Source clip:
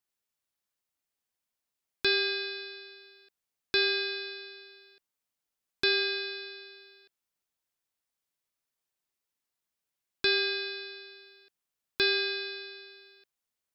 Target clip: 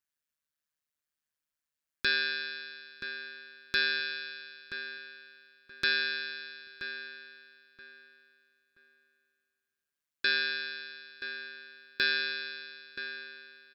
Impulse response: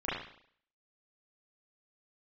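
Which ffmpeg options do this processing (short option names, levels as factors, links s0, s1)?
-filter_complex "[0:a]equalizer=f=400:t=o:w=0.33:g=-10,equalizer=f=800:t=o:w=0.33:g=-11,equalizer=f=1600:t=o:w=0.33:g=7,tremolo=f=150:d=0.824,asplit=2[s0][s1];[s1]adelay=977,lowpass=f=2500:p=1,volume=0.355,asplit=2[s2][s3];[s3]adelay=977,lowpass=f=2500:p=1,volume=0.28,asplit=2[s4][s5];[s5]adelay=977,lowpass=f=2500:p=1,volume=0.28[s6];[s2][s4][s6]amix=inputs=3:normalize=0[s7];[s0][s7]amix=inputs=2:normalize=0"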